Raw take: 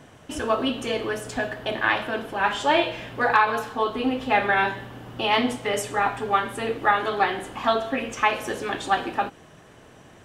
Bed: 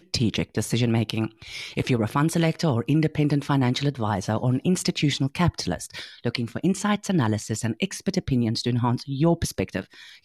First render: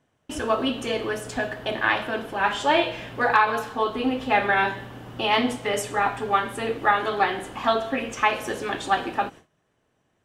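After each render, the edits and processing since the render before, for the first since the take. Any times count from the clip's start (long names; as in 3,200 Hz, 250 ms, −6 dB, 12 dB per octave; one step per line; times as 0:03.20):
noise gate with hold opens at −35 dBFS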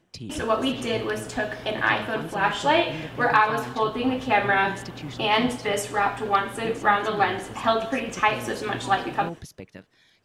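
mix in bed −15 dB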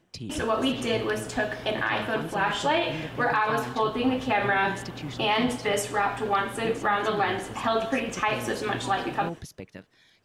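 brickwall limiter −14.5 dBFS, peak gain reduction 8.5 dB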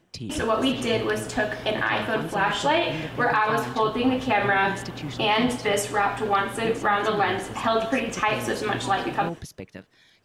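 level +2.5 dB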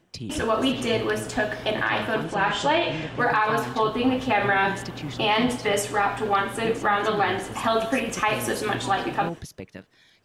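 0:02.24–0:03.19: low-pass filter 8,500 Hz 24 dB per octave
0:07.52–0:08.75: parametric band 11,000 Hz +9 dB 0.75 octaves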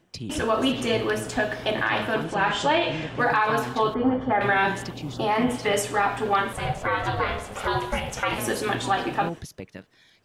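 0:03.94–0:04.41: Savitzky-Golay smoothing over 41 samples
0:04.92–0:05.53: parametric band 1,300 Hz → 4,900 Hz −14.5 dB
0:06.53–0:08.38: ring modulation 310 Hz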